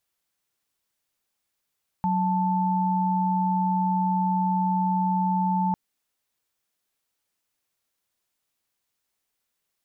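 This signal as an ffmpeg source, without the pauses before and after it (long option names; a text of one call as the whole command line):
ffmpeg -f lavfi -i "aevalsrc='0.0668*(sin(2*PI*185*t)+sin(2*PI*880*t))':duration=3.7:sample_rate=44100" out.wav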